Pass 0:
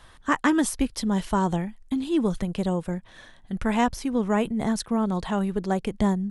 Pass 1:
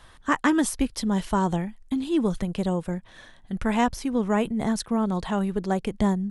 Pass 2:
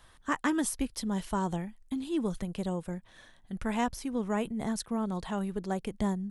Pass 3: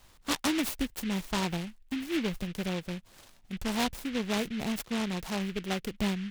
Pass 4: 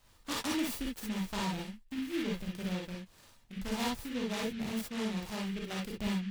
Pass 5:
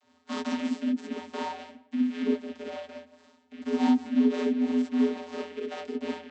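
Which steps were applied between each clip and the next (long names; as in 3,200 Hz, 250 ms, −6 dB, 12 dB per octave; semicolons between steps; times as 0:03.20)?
no processing that can be heard
high-shelf EQ 10,000 Hz +9 dB; level −7.5 dB
short delay modulated by noise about 2,300 Hz, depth 0.16 ms
reverb whose tail is shaped and stops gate 80 ms rising, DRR −2 dB; level −8.5 dB
channel vocoder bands 32, square 83.9 Hz; tape delay 167 ms, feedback 23%, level −15 dB, low-pass 1,500 Hz; level +8.5 dB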